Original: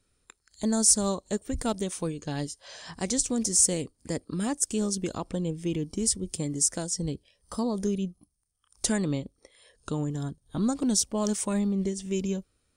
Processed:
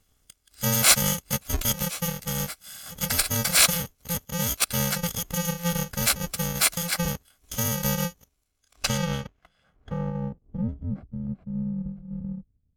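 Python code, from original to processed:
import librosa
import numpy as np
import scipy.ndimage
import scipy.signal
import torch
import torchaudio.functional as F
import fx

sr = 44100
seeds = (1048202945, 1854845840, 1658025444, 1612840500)

y = fx.bit_reversed(x, sr, seeds[0], block=128)
y = fx.filter_sweep_lowpass(y, sr, from_hz=10000.0, to_hz=160.0, start_s=8.46, end_s=10.97, q=0.77)
y = fx.formant_shift(y, sr, semitones=3)
y = y * 10.0 ** (6.5 / 20.0)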